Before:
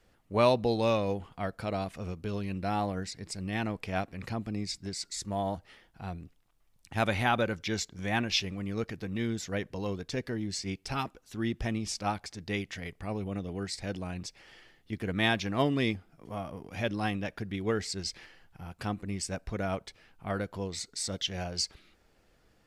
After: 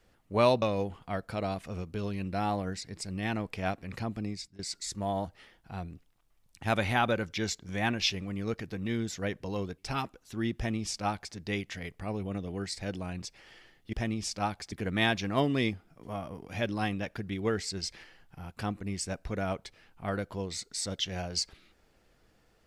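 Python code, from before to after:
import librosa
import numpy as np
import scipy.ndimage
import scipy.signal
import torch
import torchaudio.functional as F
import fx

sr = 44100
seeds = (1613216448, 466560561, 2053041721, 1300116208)

y = fx.edit(x, sr, fx.cut(start_s=0.62, length_s=0.3),
    fx.fade_out_to(start_s=4.53, length_s=0.36, floor_db=-23.0),
    fx.cut(start_s=10.08, length_s=0.71),
    fx.duplicate(start_s=11.57, length_s=0.79, to_s=14.94), tone=tone)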